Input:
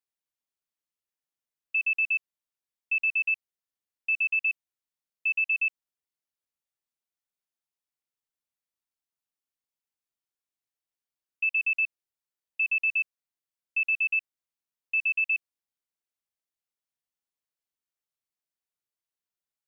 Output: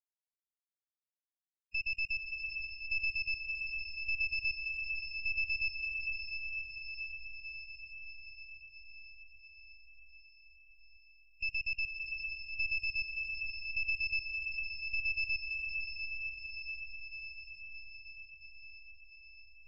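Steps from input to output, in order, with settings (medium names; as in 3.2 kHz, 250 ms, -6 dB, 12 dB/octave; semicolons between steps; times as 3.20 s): partial rectifier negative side -12 dB; echo that smears into a reverb 538 ms, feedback 72%, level -4 dB; trim -6 dB; Vorbis 16 kbps 22.05 kHz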